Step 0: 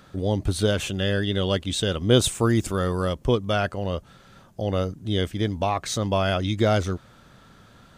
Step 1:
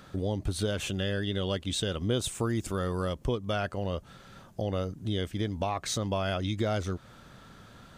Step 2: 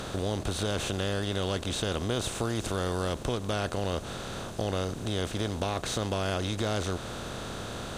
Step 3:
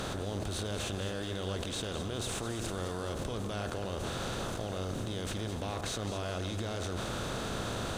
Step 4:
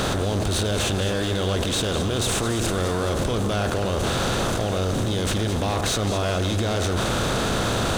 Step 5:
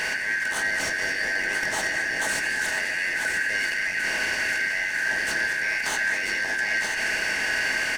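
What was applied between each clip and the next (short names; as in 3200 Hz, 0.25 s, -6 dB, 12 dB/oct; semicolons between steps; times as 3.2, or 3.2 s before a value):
compressor 2.5:1, threshold -30 dBFS, peak gain reduction 12.5 dB
per-bin compression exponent 0.4; gain -5 dB
level quantiser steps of 21 dB; sample leveller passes 1; echo with dull and thin repeats by turns 0.106 s, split 2000 Hz, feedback 69%, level -7 dB; gain +1.5 dB
sample leveller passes 2; gain +7 dB
four-band scrambler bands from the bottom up 3142; echo 0.986 s -6.5 dB; on a send at -4 dB: reverb RT60 0.65 s, pre-delay 3 ms; on the sum: gain -5 dB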